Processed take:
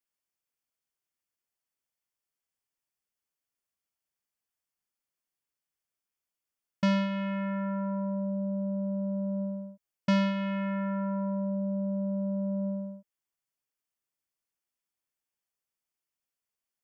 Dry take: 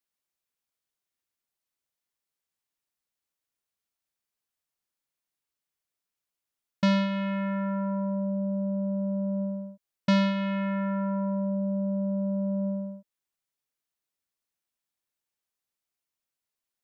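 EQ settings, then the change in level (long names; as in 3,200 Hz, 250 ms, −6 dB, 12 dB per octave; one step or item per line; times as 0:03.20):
notch filter 3,900 Hz, Q 5.5
−2.5 dB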